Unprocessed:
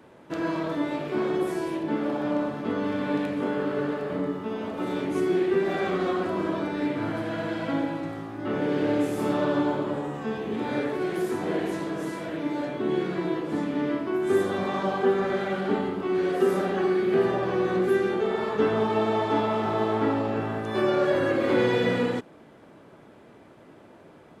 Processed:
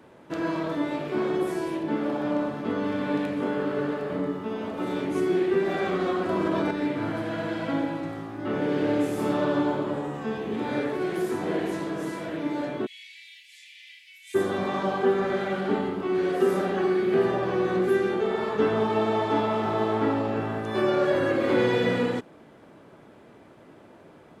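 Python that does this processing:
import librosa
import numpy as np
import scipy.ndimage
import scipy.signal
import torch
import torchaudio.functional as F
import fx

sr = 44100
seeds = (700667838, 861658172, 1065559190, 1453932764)

y = fx.env_flatten(x, sr, amount_pct=100, at=(6.29, 6.71))
y = fx.steep_highpass(y, sr, hz=2100.0, slope=72, at=(12.85, 14.34), fade=0.02)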